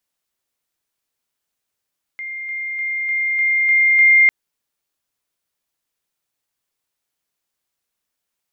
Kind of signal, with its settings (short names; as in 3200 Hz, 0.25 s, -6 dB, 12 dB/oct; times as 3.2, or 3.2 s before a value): level ladder 2110 Hz -26 dBFS, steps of 3 dB, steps 7, 0.30 s 0.00 s